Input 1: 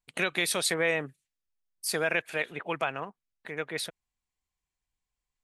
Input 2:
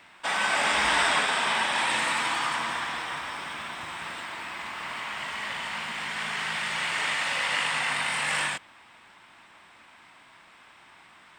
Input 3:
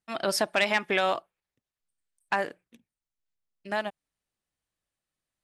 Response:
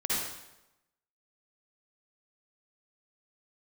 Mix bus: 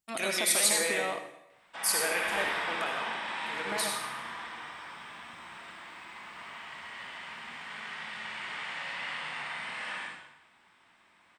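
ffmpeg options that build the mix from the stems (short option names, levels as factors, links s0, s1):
-filter_complex "[0:a]bass=f=250:g=-13,treble=f=4000:g=12,volume=0.299,asplit=2[s0][s1];[s1]volume=0.596[s2];[1:a]acrossover=split=4800[s3][s4];[s4]acompressor=threshold=0.00282:ratio=4:attack=1:release=60[s5];[s3][s5]amix=inputs=2:normalize=0,adelay=1500,volume=0.141,asplit=2[s6][s7];[s7]volume=0.668[s8];[2:a]alimiter=limit=0.0944:level=0:latency=1,volume=0.596,asplit=2[s9][s10];[s10]volume=0.141[s11];[3:a]atrim=start_sample=2205[s12];[s2][s8][s11]amix=inputs=3:normalize=0[s13];[s13][s12]afir=irnorm=-1:irlink=0[s14];[s0][s6][s9][s14]amix=inputs=4:normalize=0"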